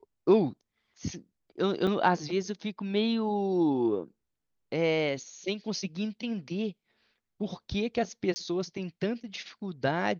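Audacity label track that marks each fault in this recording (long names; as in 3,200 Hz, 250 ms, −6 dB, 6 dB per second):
1.870000	1.870000	drop-out 3.8 ms
8.340000	8.360000	drop-out 20 ms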